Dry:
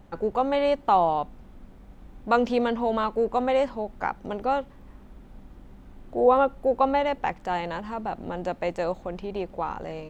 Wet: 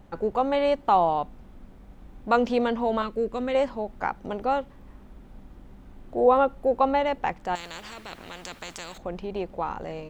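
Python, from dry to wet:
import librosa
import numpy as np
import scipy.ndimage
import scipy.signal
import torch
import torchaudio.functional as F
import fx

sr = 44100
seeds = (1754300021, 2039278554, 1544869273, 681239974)

y = fx.peak_eq(x, sr, hz=840.0, db=-15.0, octaves=0.71, at=(3.02, 3.55))
y = fx.spectral_comp(y, sr, ratio=4.0, at=(7.55, 8.98))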